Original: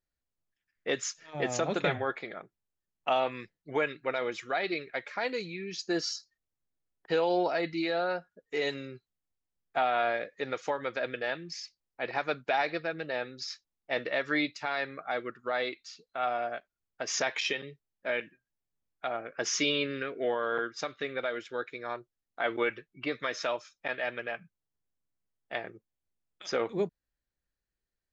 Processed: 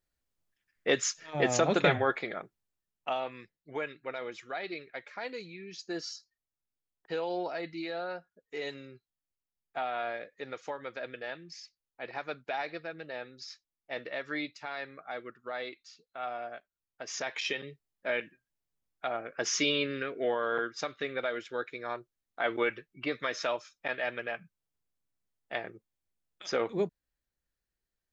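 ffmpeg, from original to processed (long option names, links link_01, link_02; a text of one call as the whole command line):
ffmpeg -i in.wav -af "volume=10.5dB,afade=type=out:start_time=2.36:duration=0.82:silence=0.298538,afade=type=in:start_time=17.2:duration=0.47:silence=0.473151" out.wav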